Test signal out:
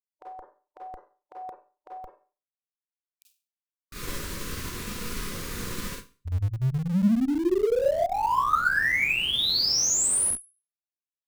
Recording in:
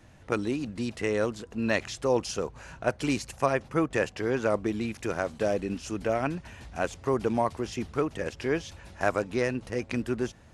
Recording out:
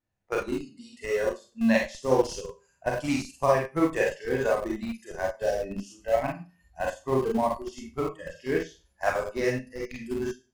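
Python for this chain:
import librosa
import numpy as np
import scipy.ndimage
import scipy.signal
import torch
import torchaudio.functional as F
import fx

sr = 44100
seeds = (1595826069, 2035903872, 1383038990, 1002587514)

p1 = fx.hum_notches(x, sr, base_hz=60, count=4)
p2 = fx.noise_reduce_blind(p1, sr, reduce_db=20)
p3 = fx.peak_eq(p2, sr, hz=3000.0, db=-2.5, octaves=0.41)
p4 = fx.vibrato(p3, sr, rate_hz=0.53, depth_cents=7.0)
p5 = fx.rev_schroeder(p4, sr, rt60_s=0.36, comb_ms=31, drr_db=-2.0)
p6 = fx.schmitt(p5, sr, flips_db=-23.5)
p7 = p5 + (p6 * 10.0 ** (-10.0 / 20.0))
y = fx.upward_expand(p7, sr, threshold_db=-40.0, expansion=1.5)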